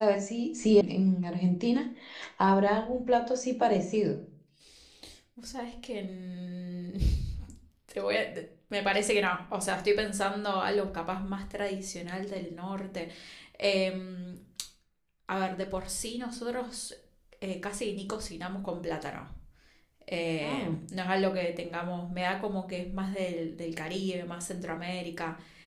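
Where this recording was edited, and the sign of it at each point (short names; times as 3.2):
0.81 sound cut off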